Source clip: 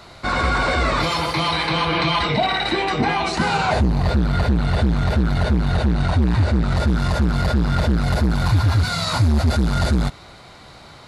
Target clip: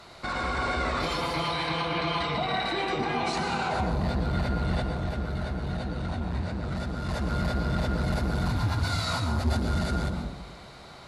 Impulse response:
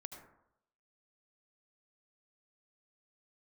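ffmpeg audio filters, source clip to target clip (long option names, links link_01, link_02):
-filter_complex "[0:a]lowshelf=frequency=150:gain=-4.5,alimiter=limit=-16.5dB:level=0:latency=1:release=94,asettb=1/sr,asplit=3[link_01][link_02][link_03];[link_01]atrim=end=4.824[link_04];[link_02]atrim=start=4.82:end=7.09,asetpts=PTS-STARTPTS,afade=type=in:duration=0.004:curve=qsin,afade=type=out:start_time=2.266:duration=0.004:curve=qsin,flanger=delay=5.9:depth=9.3:regen=65:speed=1:shape=sinusoidal[link_05];[link_03]atrim=start=7.086[link_06];[link_04][link_05]acrossfade=duration=0.004:curve1=hsin:curve2=qsin[link_07];[link_07][link_06]acrossfade=duration=0.004:curve1=qsin:curve2=hsin[link_08];[1:a]atrim=start_sample=2205,asetrate=29106,aresample=44100[link_09];[link_08][link_09]afir=irnorm=-1:irlink=0,volume=-1.5dB"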